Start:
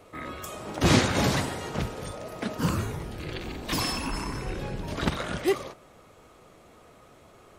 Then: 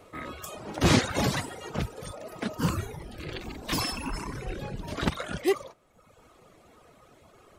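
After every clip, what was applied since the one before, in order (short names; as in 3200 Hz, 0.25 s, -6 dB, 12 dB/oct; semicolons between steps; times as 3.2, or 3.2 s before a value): reverb removal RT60 1 s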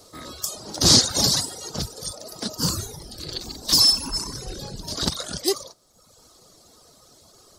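resonant high shelf 3400 Hz +12 dB, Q 3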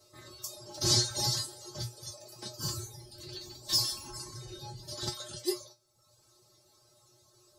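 resonator 120 Hz, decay 0.17 s, harmonics odd, mix 100%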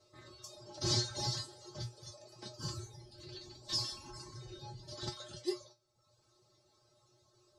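air absorption 87 m; gain -3.5 dB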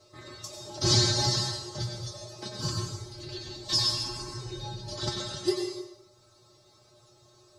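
plate-style reverb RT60 0.9 s, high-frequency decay 0.9×, pre-delay 80 ms, DRR 2.5 dB; gain +9 dB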